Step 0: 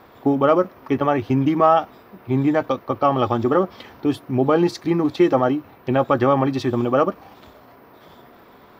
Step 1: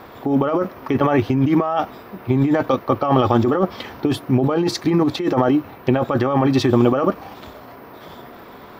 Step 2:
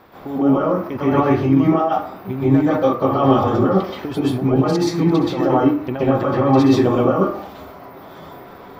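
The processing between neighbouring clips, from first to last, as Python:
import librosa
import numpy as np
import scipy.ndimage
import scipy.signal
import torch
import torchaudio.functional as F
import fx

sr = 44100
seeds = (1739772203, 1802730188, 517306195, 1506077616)

y1 = fx.over_compress(x, sr, threshold_db=-21.0, ratio=-1.0)
y1 = F.gain(torch.from_numpy(y1), 4.5).numpy()
y2 = fx.rev_plate(y1, sr, seeds[0], rt60_s=0.52, hf_ratio=0.5, predelay_ms=115, drr_db=-8.0)
y2 = F.gain(torch.from_numpy(y2), -8.5).numpy()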